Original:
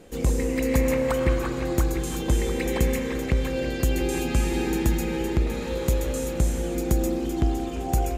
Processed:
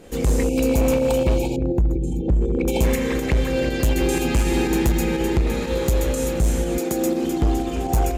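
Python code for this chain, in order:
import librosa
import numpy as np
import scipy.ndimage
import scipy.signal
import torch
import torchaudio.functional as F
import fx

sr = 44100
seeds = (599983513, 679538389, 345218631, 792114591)

p1 = fx.envelope_sharpen(x, sr, power=2.0, at=(1.56, 2.68))
p2 = fx.highpass(p1, sr, hz=fx.line((6.77, 320.0), (7.4, 100.0)), slope=12, at=(6.77, 7.4), fade=0.02)
p3 = fx.spec_box(p2, sr, start_s=0.43, length_s=2.41, low_hz=940.0, high_hz=2200.0, gain_db=-30)
p4 = fx.volume_shaper(p3, sr, bpm=122, per_beat=2, depth_db=-15, release_ms=79.0, shape='fast start')
p5 = p3 + F.gain(torch.from_numpy(p4), -0.5).numpy()
y = np.clip(p5, -10.0 ** (-13.5 / 20.0), 10.0 ** (-13.5 / 20.0))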